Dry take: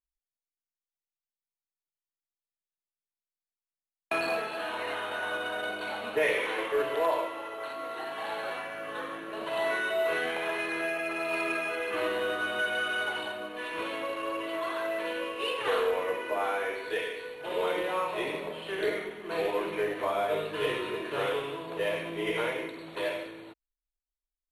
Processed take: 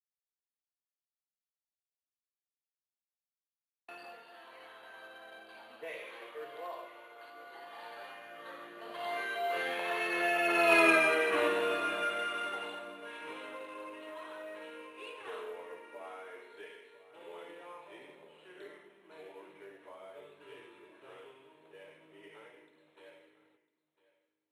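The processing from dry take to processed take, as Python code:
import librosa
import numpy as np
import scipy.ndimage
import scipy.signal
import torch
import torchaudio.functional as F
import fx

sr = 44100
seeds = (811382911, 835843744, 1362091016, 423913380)

y = fx.doppler_pass(x, sr, speed_mps=19, closest_m=6.1, pass_at_s=10.83)
y = fx.highpass(y, sr, hz=180.0, slope=6)
y = y + 10.0 ** (-18.0 / 20.0) * np.pad(y, (int(1002 * sr / 1000.0), 0))[:len(y)]
y = F.gain(torch.from_numpy(y), 7.5).numpy()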